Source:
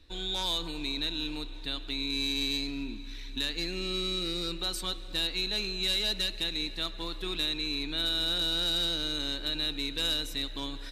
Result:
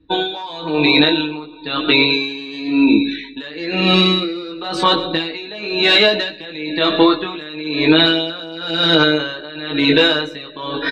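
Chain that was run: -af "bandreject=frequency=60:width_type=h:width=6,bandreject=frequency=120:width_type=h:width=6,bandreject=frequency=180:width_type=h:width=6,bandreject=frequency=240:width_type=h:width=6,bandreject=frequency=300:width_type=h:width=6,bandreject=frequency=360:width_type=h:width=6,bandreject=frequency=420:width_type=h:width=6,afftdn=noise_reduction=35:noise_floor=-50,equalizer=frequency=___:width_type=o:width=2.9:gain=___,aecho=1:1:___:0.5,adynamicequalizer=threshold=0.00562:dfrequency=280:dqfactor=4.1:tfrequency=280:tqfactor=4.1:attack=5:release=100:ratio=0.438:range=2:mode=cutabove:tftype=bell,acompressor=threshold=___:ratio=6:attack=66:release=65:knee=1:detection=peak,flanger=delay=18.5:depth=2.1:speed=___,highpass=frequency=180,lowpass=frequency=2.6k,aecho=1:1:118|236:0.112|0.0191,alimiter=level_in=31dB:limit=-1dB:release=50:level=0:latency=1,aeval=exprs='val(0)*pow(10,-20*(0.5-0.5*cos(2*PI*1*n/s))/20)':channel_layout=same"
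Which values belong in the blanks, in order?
720, 7, 6.5, -36dB, 0.35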